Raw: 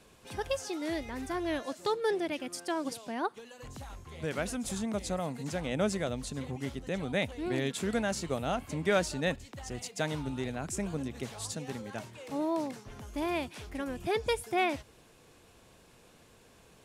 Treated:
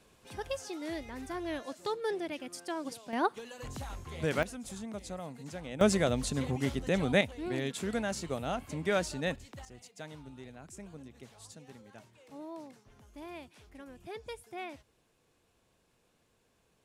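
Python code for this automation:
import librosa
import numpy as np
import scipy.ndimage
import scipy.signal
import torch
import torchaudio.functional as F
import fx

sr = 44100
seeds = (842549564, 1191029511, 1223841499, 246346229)

y = fx.gain(x, sr, db=fx.steps((0.0, -4.0), (3.13, 3.5), (4.43, -7.5), (5.81, 5.0), (7.21, -2.5), (9.65, -13.0)))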